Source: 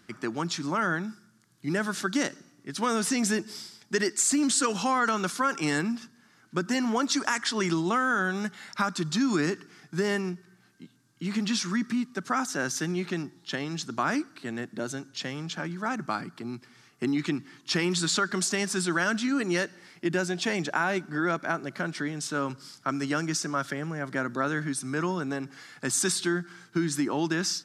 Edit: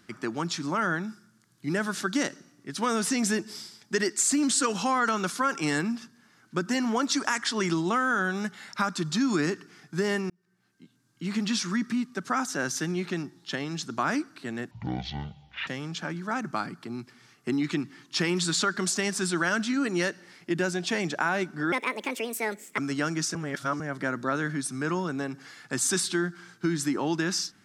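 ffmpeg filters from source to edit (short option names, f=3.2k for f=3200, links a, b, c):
-filter_complex "[0:a]asplit=8[a][b][c][d][e][f][g][h];[a]atrim=end=10.3,asetpts=PTS-STARTPTS,afade=t=out:st=10.296:d=0.004:c=hsin[i];[b]atrim=start=10.3:end=14.714,asetpts=PTS-STARTPTS,afade=t=in:d=1.01[j];[c]atrim=start=14.71:end=15.22,asetpts=PTS-STARTPTS,asetrate=23373,aresample=44100[k];[d]atrim=start=15.216:end=21.274[l];[e]atrim=start=21.27:end=22.9,asetpts=PTS-STARTPTS,asetrate=67914,aresample=44100,atrim=end_sample=46677,asetpts=PTS-STARTPTS[m];[f]atrim=start=22.896:end=23.472[n];[g]atrim=start=23.468:end=23.922,asetpts=PTS-STARTPTS,areverse[o];[h]atrim=start=23.918[p];[i][j]concat=n=2:v=0:a=1[q];[q][k]acrossfade=d=0.004:c1=hsin:c2=hsin[r];[r][l]acrossfade=d=0.004:c1=hsin:c2=hsin[s];[s][m]acrossfade=d=0.004:c1=hsin:c2=hsin[t];[t][n]acrossfade=d=0.004:c1=hsin:c2=hsin[u];[u][o]acrossfade=d=0.004:c1=hsin:c2=hsin[v];[v][p]acrossfade=d=0.004:c1=hsin:c2=hsin"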